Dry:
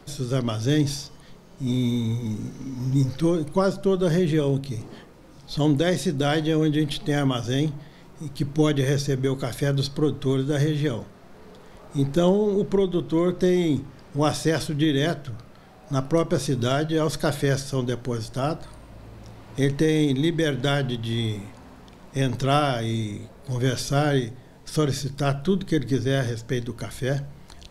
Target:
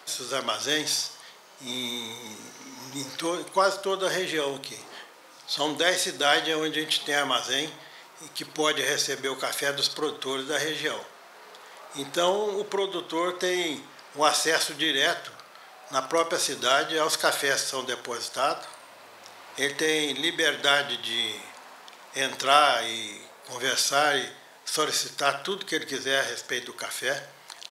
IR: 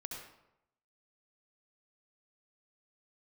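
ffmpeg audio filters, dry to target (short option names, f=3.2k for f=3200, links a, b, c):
-filter_complex "[0:a]highpass=860,acontrast=75,asplit=2[a][b];[b]aecho=0:1:64|128|192|256:0.188|0.0848|0.0381|0.0172[c];[a][c]amix=inputs=2:normalize=0"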